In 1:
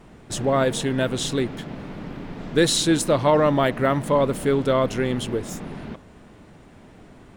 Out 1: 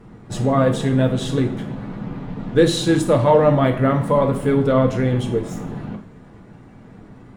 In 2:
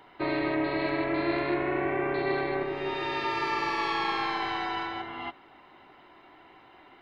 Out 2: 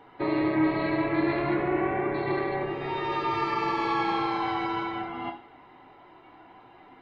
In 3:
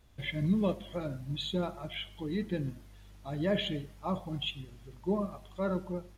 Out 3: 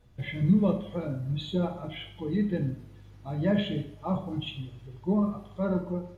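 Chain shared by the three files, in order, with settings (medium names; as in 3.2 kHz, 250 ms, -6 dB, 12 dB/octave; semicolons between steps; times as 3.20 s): coarse spectral quantiser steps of 15 dB; treble shelf 2.2 kHz -10 dB; two-slope reverb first 0.48 s, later 2.3 s, from -25 dB, DRR 3.5 dB; trim +3 dB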